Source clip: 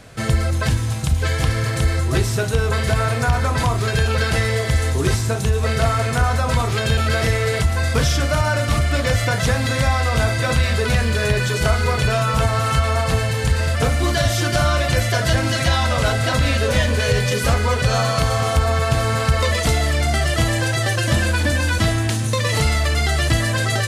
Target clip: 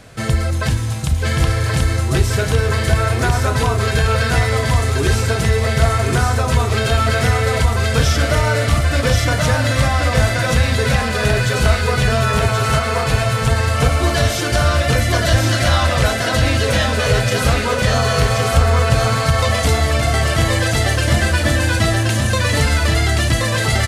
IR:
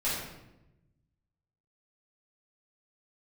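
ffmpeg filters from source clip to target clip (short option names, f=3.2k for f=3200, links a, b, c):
-af "aecho=1:1:1078:0.708,volume=1dB"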